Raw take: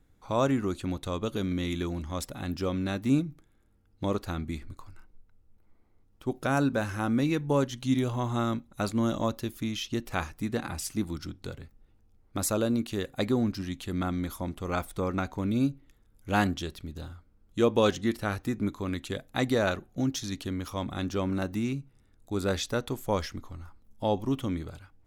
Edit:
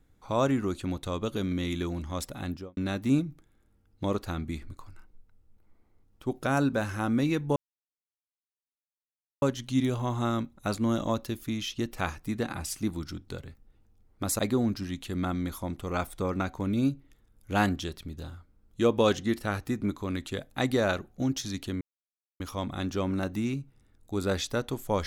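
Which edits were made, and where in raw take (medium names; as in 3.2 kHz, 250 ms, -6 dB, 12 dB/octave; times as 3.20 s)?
2.43–2.77 s: studio fade out
7.56 s: insert silence 1.86 s
12.53–13.17 s: delete
20.59 s: insert silence 0.59 s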